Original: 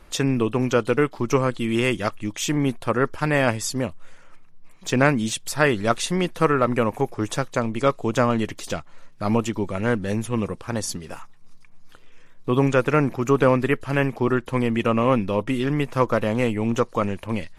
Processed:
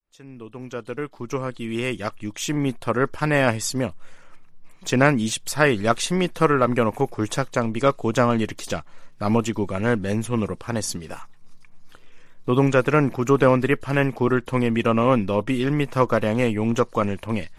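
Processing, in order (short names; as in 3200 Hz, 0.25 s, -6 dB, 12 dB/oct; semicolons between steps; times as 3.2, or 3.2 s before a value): opening faded in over 3.40 s; gain +1 dB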